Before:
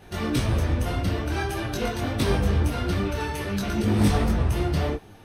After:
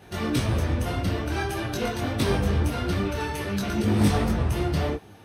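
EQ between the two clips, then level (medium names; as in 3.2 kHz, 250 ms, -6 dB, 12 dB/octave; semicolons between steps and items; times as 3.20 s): high-pass 63 Hz; 0.0 dB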